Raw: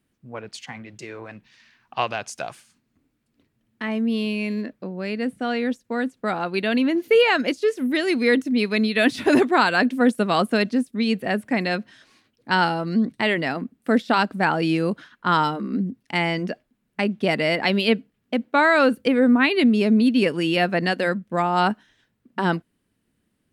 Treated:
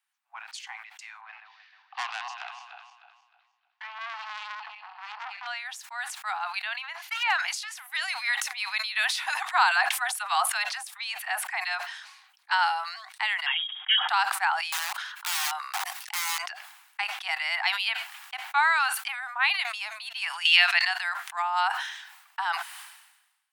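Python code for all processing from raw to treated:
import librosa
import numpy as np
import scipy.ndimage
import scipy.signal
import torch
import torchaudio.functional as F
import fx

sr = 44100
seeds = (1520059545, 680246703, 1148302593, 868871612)

y = fx.chain(x, sr, fx.reverse_delay_fb(ms=154, feedback_pct=57, wet_db=-8.0),
    fx.lowpass(hz=4600.0, slope=24),
    fx.transformer_sat(knee_hz=2800.0), at=(1.21, 5.47))
y = fx.chain(y, sr, fx.lowpass(hz=3500.0, slope=6),
    fx.overload_stage(gain_db=11.5), at=(6.64, 7.43))
y = fx.chain(y, sr, fx.low_shelf(hz=490.0, db=9.0),
    fx.dispersion(late='lows', ms=57.0, hz=420.0), at=(9.46, 12.53))
y = fx.chain(y, sr, fx.low_shelf(hz=140.0, db=-10.0),
    fx.comb(ms=6.2, depth=0.9),
    fx.freq_invert(carrier_hz=3500), at=(13.46, 14.09))
y = fx.chain(y, sr, fx.high_shelf(hz=2700.0, db=5.5),
    fx.overflow_wrap(gain_db=19.5),
    fx.sustainer(db_per_s=76.0), at=(14.72, 16.42))
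y = fx.chain(y, sr, fx.weighting(curve='D'),
    fx.band_squash(depth_pct=70), at=(20.45, 20.85))
y = scipy.signal.sosfilt(scipy.signal.butter(16, 760.0, 'highpass', fs=sr, output='sos'), y)
y = fx.sustainer(y, sr, db_per_s=57.0)
y = y * 10.0 ** (-3.5 / 20.0)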